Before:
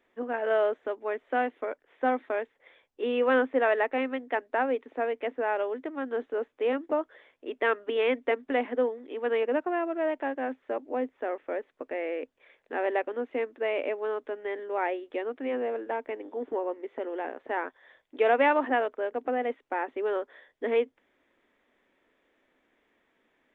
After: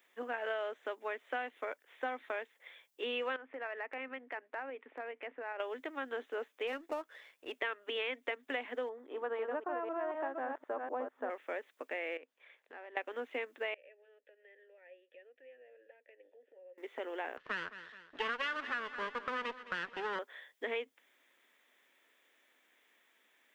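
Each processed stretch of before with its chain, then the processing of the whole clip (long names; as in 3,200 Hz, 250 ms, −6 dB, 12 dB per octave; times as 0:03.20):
0:03.36–0:05.60: low-pass filter 2,600 Hz 24 dB per octave + downward compressor 4 to 1, threshold −34 dBFS + shaped tremolo saw up 9.7 Hz, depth 30%
0:06.67–0:07.52: gain on one half-wave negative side −3 dB + notch filter 3,200 Hz, Q 17
0:08.89–0:11.30: delay that plays each chunk backwards 250 ms, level −4.5 dB + high shelf with overshoot 1,700 Hz −11.5 dB, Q 1.5
0:12.17–0:12.97: low-pass filter 1,200 Hz 6 dB per octave + spectral tilt +1.5 dB per octave + downward compressor 3 to 1, threshold −47 dBFS
0:13.74–0:16.78: downward compressor 5 to 1, threshold −38 dBFS + flanger 1.2 Hz, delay 2.5 ms, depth 1.3 ms, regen −71% + formant filter e
0:17.37–0:20.19: lower of the sound and its delayed copy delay 0.64 ms + low-pass filter 2,900 Hz + repeating echo 213 ms, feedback 51%, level −17 dB
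whole clip: spectral tilt +4.5 dB per octave; downward compressor 6 to 1, threshold −32 dBFS; level −2 dB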